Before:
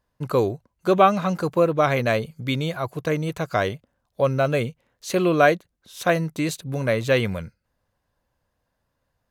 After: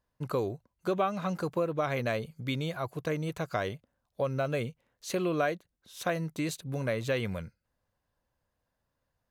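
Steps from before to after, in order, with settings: compressor 2.5:1, threshold -21 dBFS, peak gain reduction 8 dB; gain -6.5 dB

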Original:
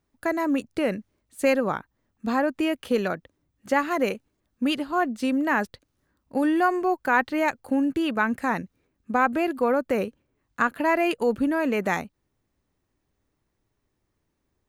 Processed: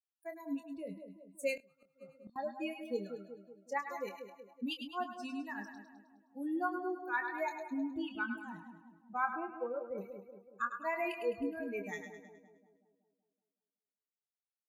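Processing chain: per-bin expansion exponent 3; split-band echo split 870 Hz, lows 0.188 s, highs 0.104 s, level -8 dB; 6.51–7.22 dynamic EQ 750 Hz, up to -4 dB, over -36 dBFS, Q 0.8; 9.33–9.98 LPF 1800 Hz 24 dB/oct; low shelf 200 Hz -7.5 dB; 1.55–2.36 flipped gate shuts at -32 dBFS, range -26 dB; doubler 25 ms -8.5 dB; gain -8 dB

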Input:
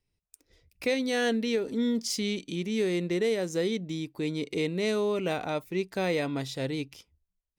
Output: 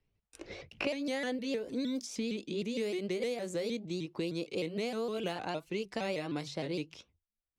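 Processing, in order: repeated pitch sweeps +3 st, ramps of 0.154 s; gate with hold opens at -54 dBFS; low-pass opened by the level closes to 3000 Hz, open at -26 dBFS; three-band squash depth 100%; gain -6 dB

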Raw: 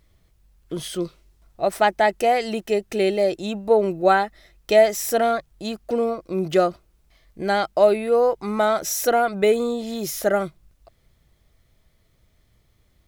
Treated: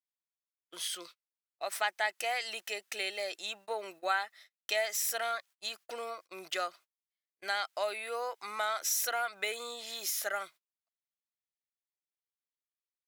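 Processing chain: HPF 1400 Hz 12 dB/oct; gate -50 dBFS, range -35 dB; compressor 1.5:1, threshold -37 dBFS, peak gain reduction 6.5 dB

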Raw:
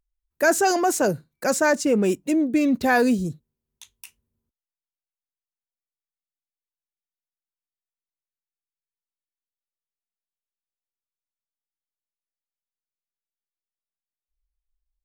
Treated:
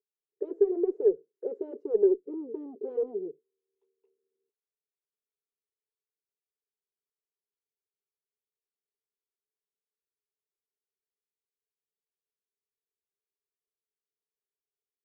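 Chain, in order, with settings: sine folder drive 11 dB, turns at -8.5 dBFS; Butterworth band-pass 420 Hz, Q 6.1; added harmonics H 4 -43 dB, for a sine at -10.5 dBFS; gain -2 dB

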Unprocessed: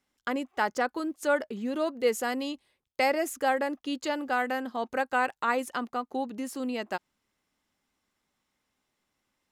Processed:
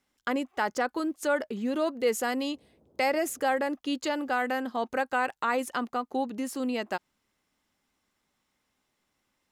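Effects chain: in parallel at +2 dB: limiter -22 dBFS, peak gain reduction 9 dB; 2.53–3.67 on the sum: band noise 54–570 Hz -58 dBFS; gain -5 dB

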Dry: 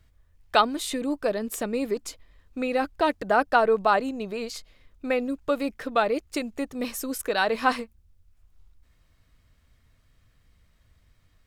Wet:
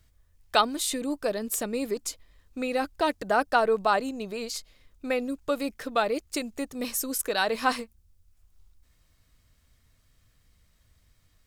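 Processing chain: tone controls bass 0 dB, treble +8 dB; gain -2.5 dB

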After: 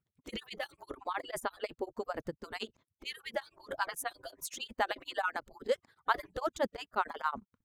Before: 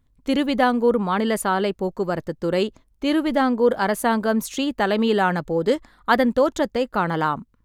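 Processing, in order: median-filter separation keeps percussive; beating tremolo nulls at 11 Hz; gain -7 dB

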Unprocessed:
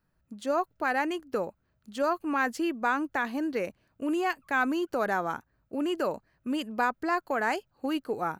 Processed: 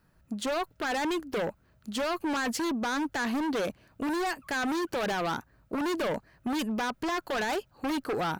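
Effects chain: limiter -23.5 dBFS, peak gain reduction 9 dB; added harmonics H 5 -8 dB, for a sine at -23.5 dBFS; overloaded stage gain 26.5 dB

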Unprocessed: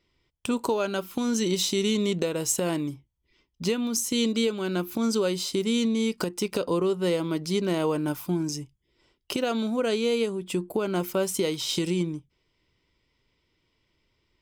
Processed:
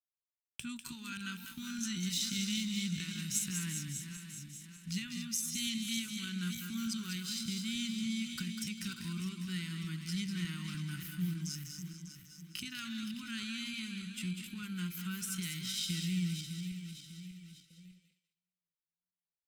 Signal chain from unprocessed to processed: regenerating reverse delay 0.221 s, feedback 66%, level -8 dB; Chebyshev band-stop 180–1600 Hz, order 3; gate -50 dBFS, range -37 dB; bell 410 Hz +13.5 dB 1 oct; tempo 0.74×; thinning echo 0.197 s, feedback 19%, high-pass 1100 Hz, level -6.5 dB; gain -7.5 dB

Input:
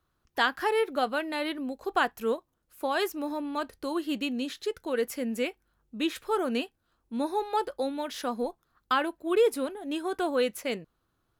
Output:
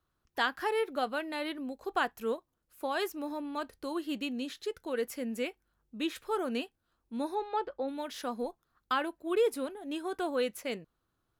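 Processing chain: 7.34–7.87 LPF 5000 Hz -> 2100 Hz 12 dB/oct; gain -4.5 dB

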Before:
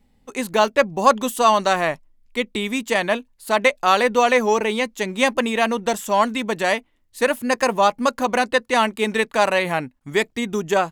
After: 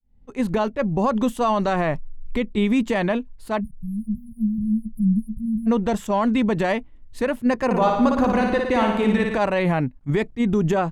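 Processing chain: opening faded in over 0.76 s; recorder AGC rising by 11 dB/s; RIAA curve playback; 3.61–5.67 spectral delete 220–9400 Hz; limiter -12 dBFS, peak gain reduction 10.5 dB; 7.65–9.38 flutter echo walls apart 9.8 m, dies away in 0.91 s; attack slew limiter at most 470 dB/s

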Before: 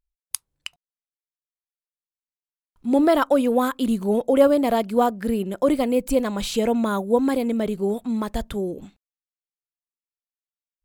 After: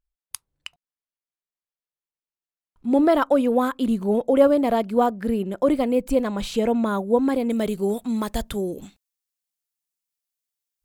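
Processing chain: high shelf 3400 Hz -7 dB, from 7.5 s +6.5 dB, from 8.72 s +11.5 dB

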